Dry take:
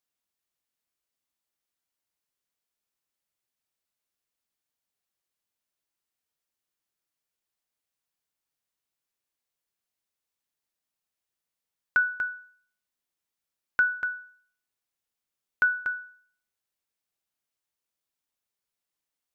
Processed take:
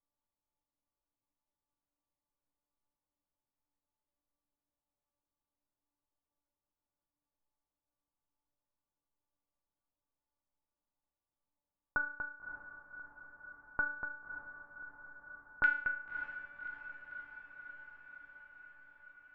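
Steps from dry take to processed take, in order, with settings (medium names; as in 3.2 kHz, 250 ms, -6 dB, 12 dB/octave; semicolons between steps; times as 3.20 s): tilt EQ -3.5 dB/octave; resonant low-pass 1 kHz, resonance Q 2.4, from 15.64 s 2.4 kHz; feedback comb 290 Hz, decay 0.55 s, harmonics all, mix 90%; echo that smears into a reverb 595 ms, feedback 72%, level -10.5 dB; trim +9 dB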